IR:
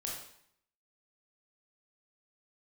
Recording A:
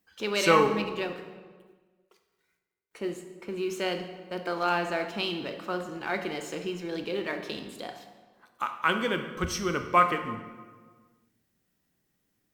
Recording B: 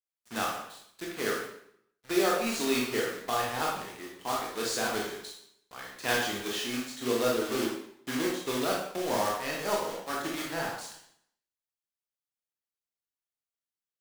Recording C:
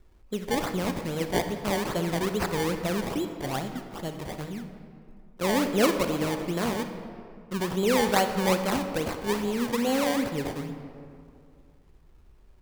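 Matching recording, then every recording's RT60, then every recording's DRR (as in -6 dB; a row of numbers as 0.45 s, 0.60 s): B; 1.5 s, 0.65 s, 2.4 s; 6.5 dB, -3.0 dB, 7.0 dB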